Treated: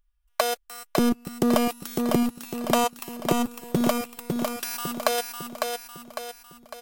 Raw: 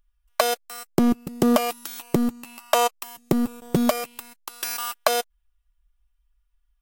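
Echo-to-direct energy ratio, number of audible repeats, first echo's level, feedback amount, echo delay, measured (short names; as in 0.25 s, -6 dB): -3.5 dB, 5, -4.5 dB, 48%, 0.553 s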